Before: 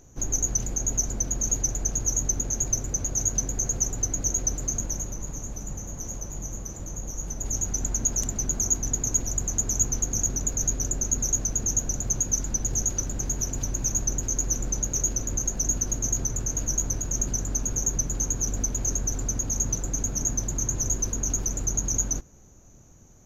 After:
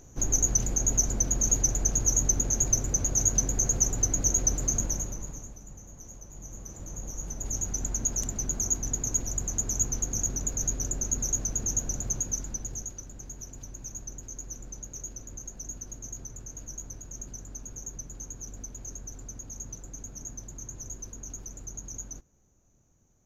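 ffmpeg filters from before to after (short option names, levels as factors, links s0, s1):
-af "volume=2.82,afade=t=out:st=4.83:d=0.75:silence=0.237137,afade=t=in:st=6.28:d=0.75:silence=0.398107,afade=t=out:st=12:d=0.97:silence=0.298538"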